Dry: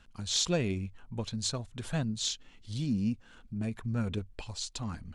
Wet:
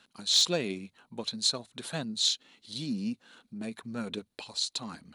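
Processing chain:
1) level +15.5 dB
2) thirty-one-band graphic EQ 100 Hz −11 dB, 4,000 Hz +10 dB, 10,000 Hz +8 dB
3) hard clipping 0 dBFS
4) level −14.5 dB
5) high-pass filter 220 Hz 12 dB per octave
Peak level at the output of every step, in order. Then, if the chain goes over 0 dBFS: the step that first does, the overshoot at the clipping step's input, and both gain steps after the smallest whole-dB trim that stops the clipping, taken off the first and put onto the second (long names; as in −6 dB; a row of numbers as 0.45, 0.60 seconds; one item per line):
+1.0, +3.5, 0.0, −14.5, −14.0 dBFS
step 1, 3.5 dB
step 1 +11.5 dB, step 4 −10.5 dB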